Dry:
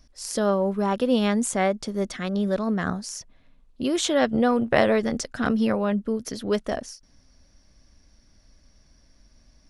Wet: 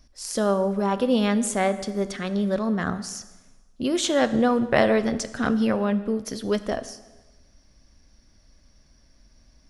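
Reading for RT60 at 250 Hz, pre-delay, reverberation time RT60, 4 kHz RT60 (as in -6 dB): 1.1 s, 4 ms, 1.2 s, 1.1 s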